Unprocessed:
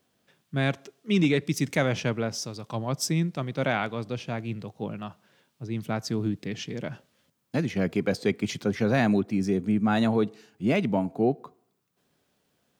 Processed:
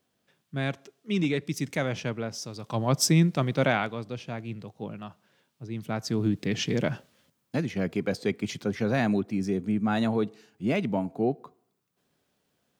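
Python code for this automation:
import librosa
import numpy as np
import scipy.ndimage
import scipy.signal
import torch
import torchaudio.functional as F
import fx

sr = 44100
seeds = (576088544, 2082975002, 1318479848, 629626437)

y = fx.gain(x, sr, db=fx.line((2.4, -4.0), (2.91, 5.0), (3.51, 5.0), (4.04, -3.5), (5.78, -3.5), (6.75, 8.0), (7.67, -2.5)))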